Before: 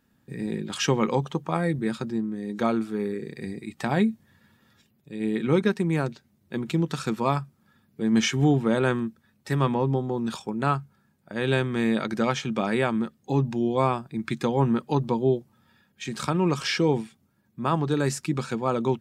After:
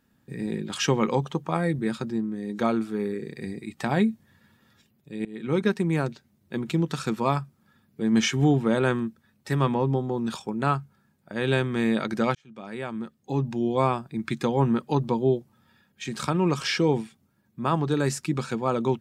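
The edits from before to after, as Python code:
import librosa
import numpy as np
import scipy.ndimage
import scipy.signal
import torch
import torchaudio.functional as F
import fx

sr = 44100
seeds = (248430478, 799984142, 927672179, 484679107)

y = fx.edit(x, sr, fx.fade_in_from(start_s=5.25, length_s=0.44, floor_db=-22.5),
    fx.fade_in_span(start_s=12.35, length_s=1.41), tone=tone)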